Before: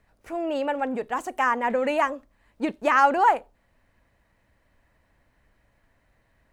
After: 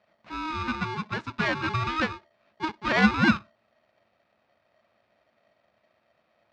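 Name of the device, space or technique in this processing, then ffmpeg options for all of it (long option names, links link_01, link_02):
ring modulator pedal into a guitar cabinet: -af "aeval=exprs='val(0)*sgn(sin(2*PI*630*n/s))':channel_layout=same,highpass=89,equalizer=frequency=110:width_type=q:width=4:gain=4,equalizer=frequency=220:width_type=q:width=4:gain=9,equalizer=frequency=400:width_type=q:width=4:gain=-4,equalizer=frequency=3100:width_type=q:width=4:gain=-4,lowpass=frequency=4400:width=0.5412,lowpass=frequency=4400:width=1.3066,volume=-3.5dB"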